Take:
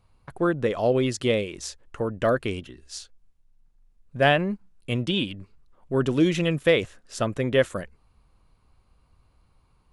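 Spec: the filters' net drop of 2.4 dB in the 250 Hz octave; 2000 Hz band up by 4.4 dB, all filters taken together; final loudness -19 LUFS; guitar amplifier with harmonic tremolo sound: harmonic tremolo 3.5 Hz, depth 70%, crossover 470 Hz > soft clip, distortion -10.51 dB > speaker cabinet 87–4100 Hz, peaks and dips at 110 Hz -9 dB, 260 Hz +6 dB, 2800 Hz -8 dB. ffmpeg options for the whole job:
-filter_complex "[0:a]equalizer=f=250:t=o:g=-6.5,equalizer=f=2k:t=o:g=7,acrossover=split=470[a][b];[a]aeval=exprs='val(0)*(1-0.7/2+0.7/2*cos(2*PI*3.5*n/s))':c=same[c];[b]aeval=exprs='val(0)*(1-0.7/2-0.7/2*cos(2*PI*3.5*n/s))':c=same[d];[c][d]amix=inputs=2:normalize=0,asoftclip=threshold=-19.5dB,highpass=87,equalizer=f=110:t=q:w=4:g=-9,equalizer=f=260:t=q:w=4:g=6,equalizer=f=2.8k:t=q:w=4:g=-8,lowpass=f=4.1k:w=0.5412,lowpass=f=4.1k:w=1.3066,volume=12.5dB"

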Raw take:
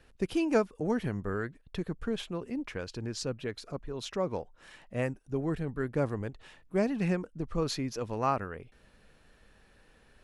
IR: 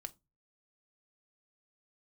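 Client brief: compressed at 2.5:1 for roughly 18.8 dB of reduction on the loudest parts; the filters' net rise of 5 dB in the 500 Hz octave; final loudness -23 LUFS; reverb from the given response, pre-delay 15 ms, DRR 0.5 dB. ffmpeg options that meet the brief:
-filter_complex "[0:a]equalizer=f=500:t=o:g=6,acompressor=threshold=-46dB:ratio=2.5,asplit=2[a][b];[1:a]atrim=start_sample=2205,adelay=15[c];[b][c]afir=irnorm=-1:irlink=0,volume=4dB[d];[a][d]amix=inputs=2:normalize=0,volume=19dB"

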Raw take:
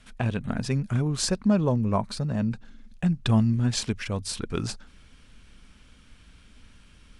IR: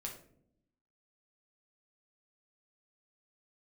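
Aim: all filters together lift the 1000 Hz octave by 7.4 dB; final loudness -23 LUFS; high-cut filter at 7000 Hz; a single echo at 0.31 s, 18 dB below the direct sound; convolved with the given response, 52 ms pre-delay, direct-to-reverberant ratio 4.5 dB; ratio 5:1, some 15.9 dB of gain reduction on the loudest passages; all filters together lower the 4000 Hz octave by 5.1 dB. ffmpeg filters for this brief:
-filter_complex "[0:a]lowpass=7k,equalizer=f=1k:t=o:g=9,equalizer=f=4k:t=o:g=-6,acompressor=threshold=-34dB:ratio=5,aecho=1:1:310:0.126,asplit=2[a][b];[1:a]atrim=start_sample=2205,adelay=52[c];[b][c]afir=irnorm=-1:irlink=0,volume=-2.5dB[d];[a][d]amix=inputs=2:normalize=0,volume=13.5dB"

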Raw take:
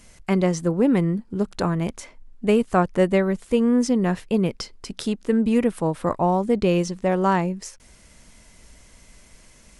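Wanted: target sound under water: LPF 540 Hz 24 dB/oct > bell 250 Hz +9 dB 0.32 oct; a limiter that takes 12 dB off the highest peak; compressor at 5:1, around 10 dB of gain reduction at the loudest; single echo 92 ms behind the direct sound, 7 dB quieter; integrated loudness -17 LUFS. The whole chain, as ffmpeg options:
-af "acompressor=threshold=-26dB:ratio=5,alimiter=level_in=0.5dB:limit=-24dB:level=0:latency=1,volume=-0.5dB,lowpass=f=540:w=0.5412,lowpass=f=540:w=1.3066,equalizer=f=250:t=o:w=0.32:g=9,aecho=1:1:92:0.447,volume=14dB"

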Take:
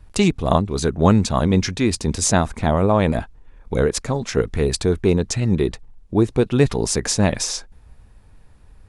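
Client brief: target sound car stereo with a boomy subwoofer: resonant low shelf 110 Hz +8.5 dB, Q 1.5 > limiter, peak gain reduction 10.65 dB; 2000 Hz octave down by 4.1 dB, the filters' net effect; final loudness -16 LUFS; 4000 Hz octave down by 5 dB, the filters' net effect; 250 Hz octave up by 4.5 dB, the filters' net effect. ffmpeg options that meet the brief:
-af "lowshelf=f=110:t=q:w=1.5:g=8.5,equalizer=f=250:t=o:g=8,equalizer=f=2k:t=o:g=-4,equalizer=f=4k:t=o:g=-6,volume=4.5dB,alimiter=limit=-5dB:level=0:latency=1"

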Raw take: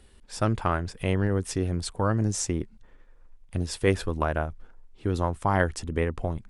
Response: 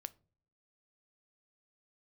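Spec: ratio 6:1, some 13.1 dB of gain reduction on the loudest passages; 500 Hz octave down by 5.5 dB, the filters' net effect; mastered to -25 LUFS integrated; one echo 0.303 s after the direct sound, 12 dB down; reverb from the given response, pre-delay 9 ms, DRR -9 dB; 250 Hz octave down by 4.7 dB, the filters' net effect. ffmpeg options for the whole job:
-filter_complex "[0:a]equalizer=f=250:t=o:g=-5,equalizer=f=500:t=o:g=-5.5,acompressor=threshold=-34dB:ratio=6,aecho=1:1:303:0.251,asplit=2[a][b];[1:a]atrim=start_sample=2205,adelay=9[c];[b][c]afir=irnorm=-1:irlink=0,volume=13dB[d];[a][d]amix=inputs=2:normalize=0,volume=4dB"

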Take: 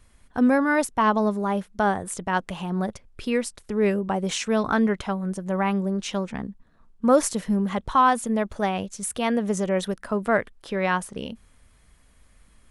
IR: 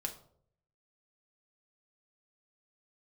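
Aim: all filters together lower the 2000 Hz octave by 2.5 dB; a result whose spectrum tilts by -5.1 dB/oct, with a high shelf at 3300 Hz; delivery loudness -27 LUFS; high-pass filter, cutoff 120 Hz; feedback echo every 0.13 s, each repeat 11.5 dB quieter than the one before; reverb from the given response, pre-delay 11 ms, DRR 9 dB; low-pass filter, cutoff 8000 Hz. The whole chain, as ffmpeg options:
-filter_complex "[0:a]highpass=120,lowpass=8k,equalizer=f=2k:t=o:g=-4.5,highshelf=f=3.3k:g=3.5,aecho=1:1:130|260|390:0.266|0.0718|0.0194,asplit=2[a][b];[1:a]atrim=start_sample=2205,adelay=11[c];[b][c]afir=irnorm=-1:irlink=0,volume=-9dB[d];[a][d]amix=inputs=2:normalize=0,volume=-3dB"

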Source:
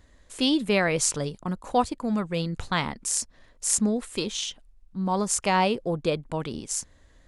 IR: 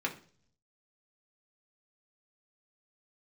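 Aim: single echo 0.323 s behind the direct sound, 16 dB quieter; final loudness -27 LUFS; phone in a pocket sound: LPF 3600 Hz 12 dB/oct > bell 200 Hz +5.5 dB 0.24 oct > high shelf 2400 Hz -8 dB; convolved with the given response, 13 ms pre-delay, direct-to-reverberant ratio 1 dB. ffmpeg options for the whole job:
-filter_complex "[0:a]aecho=1:1:323:0.158,asplit=2[a][b];[1:a]atrim=start_sample=2205,adelay=13[c];[b][c]afir=irnorm=-1:irlink=0,volume=-6.5dB[d];[a][d]amix=inputs=2:normalize=0,lowpass=3.6k,equalizer=f=200:t=o:w=0.24:g=5.5,highshelf=f=2.4k:g=-8,volume=-2dB"

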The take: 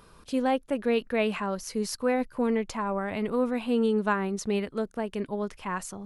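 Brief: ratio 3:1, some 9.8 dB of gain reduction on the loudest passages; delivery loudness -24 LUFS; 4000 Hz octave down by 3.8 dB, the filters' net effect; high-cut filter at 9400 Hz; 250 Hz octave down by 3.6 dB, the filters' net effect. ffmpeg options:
-af "lowpass=9.4k,equalizer=f=250:t=o:g=-4,equalizer=f=4k:t=o:g=-5.5,acompressor=threshold=-36dB:ratio=3,volume=14.5dB"

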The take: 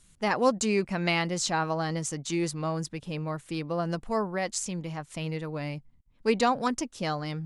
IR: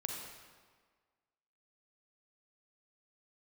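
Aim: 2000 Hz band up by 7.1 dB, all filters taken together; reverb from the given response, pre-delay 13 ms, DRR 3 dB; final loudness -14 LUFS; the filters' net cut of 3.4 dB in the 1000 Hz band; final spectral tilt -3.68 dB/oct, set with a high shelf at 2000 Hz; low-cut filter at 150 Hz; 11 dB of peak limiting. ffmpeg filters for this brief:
-filter_complex "[0:a]highpass=150,equalizer=f=1k:t=o:g=-7.5,highshelf=f=2k:g=5.5,equalizer=f=2k:t=o:g=7,alimiter=limit=-19dB:level=0:latency=1,asplit=2[a][b];[1:a]atrim=start_sample=2205,adelay=13[c];[b][c]afir=irnorm=-1:irlink=0,volume=-3.5dB[d];[a][d]amix=inputs=2:normalize=0,volume=15dB"

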